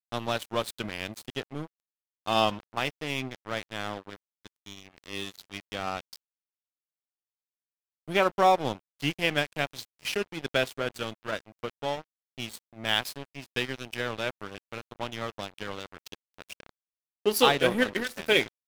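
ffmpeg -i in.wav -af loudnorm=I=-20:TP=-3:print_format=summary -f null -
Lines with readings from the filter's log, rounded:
Input Integrated:    -28.9 LUFS
Input True Peak:      -5.7 dBTP
Input LRA:            10.0 LU
Input Threshold:     -40.0 LUFS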